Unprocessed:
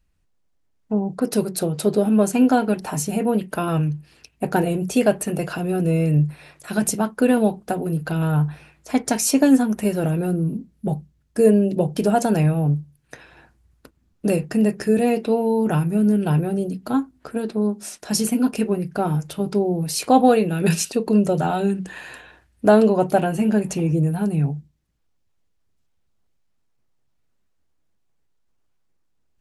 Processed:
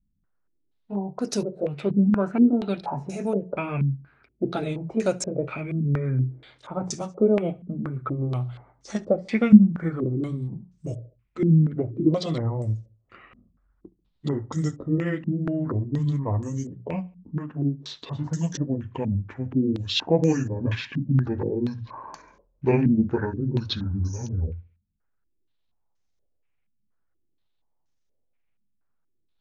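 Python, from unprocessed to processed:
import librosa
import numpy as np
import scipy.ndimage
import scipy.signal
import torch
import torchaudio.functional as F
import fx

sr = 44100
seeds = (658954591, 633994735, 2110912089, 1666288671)

p1 = fx.pitch_glide(x, sr, semitones=-11.5, runs='starting unshifted')
p2 = fx.hum_notches(p1, sr, base_hz=60, count=3)
p3 = p2 + fx.echo_feedback(p2, sr, ms=70, feedback_pct=44, wet_db=-23.5, dry=0)
p4 = fx.filter_held_lowpass(p3, sr, hz=4.2, low_hz=210.0, high_hz=6200.0)
y = F.gain(torch.from_numpy(p4), -6.0).numpy()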